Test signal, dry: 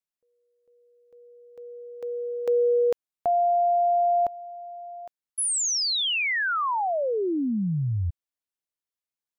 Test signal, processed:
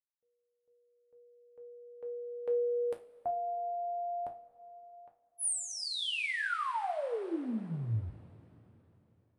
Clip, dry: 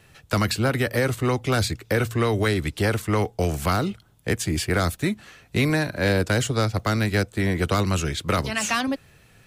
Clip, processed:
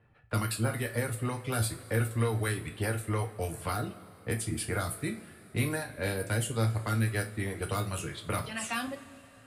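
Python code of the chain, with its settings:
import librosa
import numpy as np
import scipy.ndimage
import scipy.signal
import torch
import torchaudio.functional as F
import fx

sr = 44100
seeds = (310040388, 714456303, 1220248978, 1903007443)

y = fx.dereverb_blind(x, sr, rt60_s=0.85)
y = fx.env_lowpass(y, sr, base_hz=1500.0, full_db=-19.0)
y = fx.high_shelf_res(y, sr, hz=7900.0, db=7.5, q=3.0)
y = fx.comb_fb(y, sr, f0_hz=56.0, decay_s=0.27, harmonics='all', damping=0.0, mix_pct=60)
y = fx.rev_double_slope(y, sr, seeds[0], early_s=0.23, late_s=3.6, knee_db=-22, drr_db=3.0)
y = y * 10.0 ** (-6.5 / 20.0)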